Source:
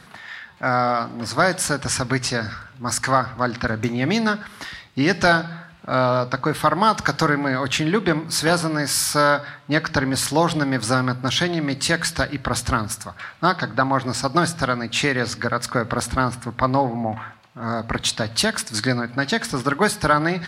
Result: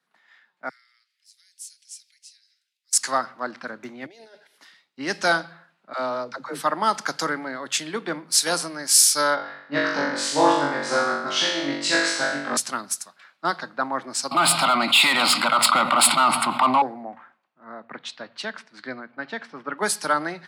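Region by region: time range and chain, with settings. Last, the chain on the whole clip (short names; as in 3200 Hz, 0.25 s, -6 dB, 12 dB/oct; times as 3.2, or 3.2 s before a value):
0.69–2.93 steep high-pass 2000 Hz + compressor 2:1, threshold -54 dBFS + high shelf 3900 Hz +9 dB
4.06–4.58 fixed phaser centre 490 Hz, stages 4 + negative-ratio compressor -33 dBFS
5.93–6.63 bell 6200 Hz +4 dB 1 oct + dispersion lows, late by 81 ms, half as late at 390 Hz
9.35–12.57 air absorption 110 m + flutter echo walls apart 3.6 m, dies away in 1.1 s
14.31–16.82 overdrive pedal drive 24 dB, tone 2100 Hz, clips at -4.5 dBFS + fixed phaser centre 1700 Hz, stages 6 + fast leveller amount 70%
17.64–19.78 Chebyshev low-pass 2600 Hz + mismatched tape noise reduction decoder only
whole clip: Bessel high-pass 290 Hz, order 8; dynamic EQ 7800 Hz, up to +8 dB, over -40 dBFS, Q 0.91; three-band expander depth 70%; gain -5.5 dB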